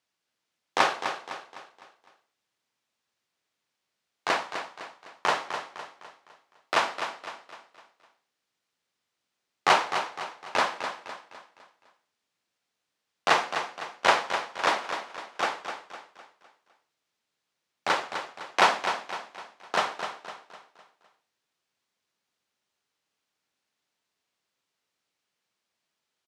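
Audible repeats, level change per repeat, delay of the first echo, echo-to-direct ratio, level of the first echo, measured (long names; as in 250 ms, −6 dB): 4, −7.5 dB, 254 ms, −7.5 dB, −8.5 dB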